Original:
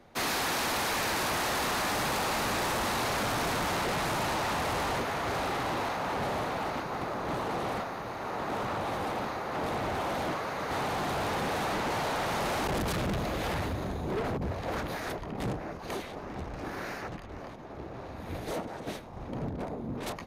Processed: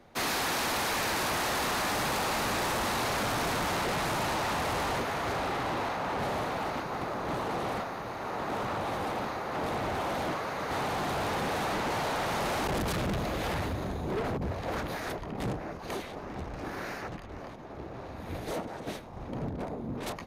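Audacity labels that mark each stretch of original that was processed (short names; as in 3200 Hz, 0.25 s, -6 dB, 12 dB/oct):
5.330000	6.190000	high shelf 5400 Hz -5 dB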